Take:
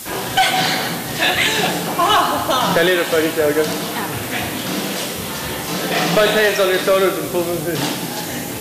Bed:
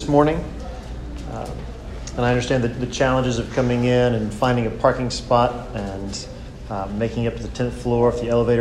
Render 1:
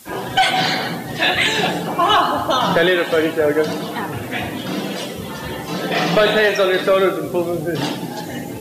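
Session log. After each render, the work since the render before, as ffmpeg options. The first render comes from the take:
-af "afftdn=nr=12:nf=-26"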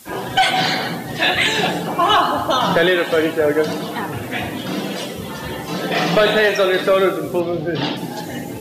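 -filter_complex "[0:a]asettb=1/sr,asplit=3[a][b][c];[a]atrim=end=7.404[d];[b]atrim=start=7.4:end=7.97,asetpts=PTS-STARTPTS,afade=t=in:d=0.004:c=qsin,afade=t=out:st=0.566:d=0.004:c=qsin,highshelf=f=5.8k:t=q:w=1.5:g=-13.5[e];[c]atrim=start=7.966[f];[d][e]acrossfade=d=0.004:c1=hsin:c2=qsin[g];[g][f]acrossfade=d=0.004:c1=qsin:c2=hsin"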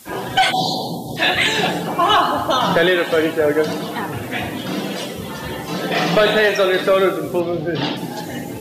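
-filter_complex "[0:a]asplit=3[a][b][c];[a]afade=t=out:st=0.51:d=0.02[d];[b]asuperstop=centerf=1800:order=20:qfactor=0.79,afade=t=in:st=0.51:d=0.02,afade=t=out:st=1.16:d=0.02[e];[c]afade=t=in:st=1.16:d=0.02[f];[d][e][f]amix=inputs=3:normalize=0"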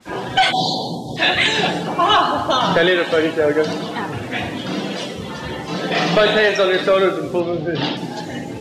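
-af "lowpass=5.9k,adynamicequalizer=threshold=0.0282:dfrequency=3300:dqfactor=0.7:tfrequency=3300:tqfactor=0.7:attack=5:release=100:ratio=0.375:range=1.5:mode=boostabove:tftype=highshelf"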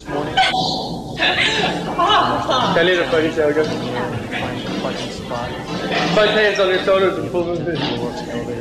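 -filter_complex "[1:a]volume=-9.5dB[a];[0:a][a]amix=inputs=2:normalize=0"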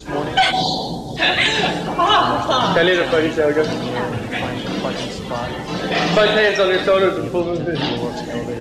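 -af "aecho=1:1:111:0.112"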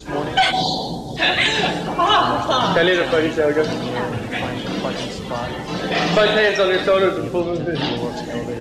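-af "volume=-1dB"

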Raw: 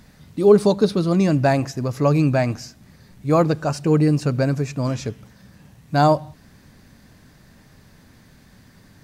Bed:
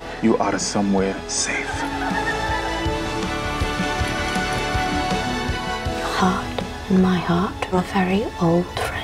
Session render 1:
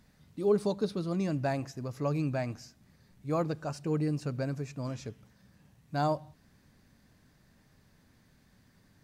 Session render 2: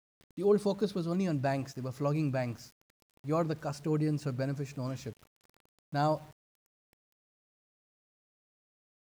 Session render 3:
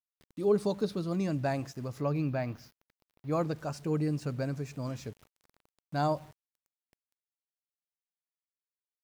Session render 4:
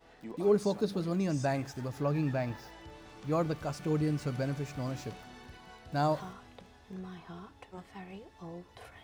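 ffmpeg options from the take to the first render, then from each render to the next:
-af "volume=-13.5dB"
-af "aeval=exprs='val(0)*gte(abs(val(0)),0.00251)':c=same"
-filter_complex "[0:a]asettb=1/sr,asplit=3[a][b][c];[a]atrim=end=2.014[d];[b]atrim=start=2.01:end=3.32,asetpts=PTS-STARTPTS,afade=t=in:d=0.004:c=qsin,afade=t=out:st=1.306:d=0.004:c=qsin,equalizer=f=8.1k:w=1.4:g=-14[e];[c]atrim=start=3.316[f];[d][e]acrossfade=d=0.004:c1=hsin:c2=qsin[g];[g][f]acrossfade=d=0.004:c1=qsin:c2=hsin"
-filter_complex "[1:a]volume=-27dB[a];[0:a][a]amix=inputs=2:normalize=0"

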